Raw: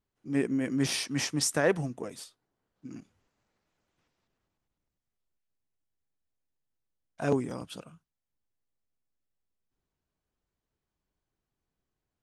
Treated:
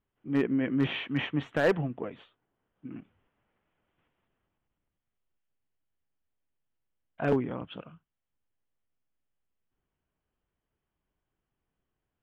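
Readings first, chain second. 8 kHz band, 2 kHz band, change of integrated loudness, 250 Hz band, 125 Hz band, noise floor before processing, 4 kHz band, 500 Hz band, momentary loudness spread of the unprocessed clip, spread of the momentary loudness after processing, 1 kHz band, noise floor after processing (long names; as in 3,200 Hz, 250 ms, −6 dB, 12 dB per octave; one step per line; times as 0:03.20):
below −25 dB, +1.0 dB, 0.0 dB, +1.5 dB, +1.0 dB, below −85 dBFS, −5.0 dB, +1.0 dB, 20 LU, 18 LU, +1.0 dB, below −85 dBFS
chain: elliptic low-pass filter 3,200 Hz, stop band 40 dB
hard clipping −20 dBFS, distortion −17 dB
level +2.5 dB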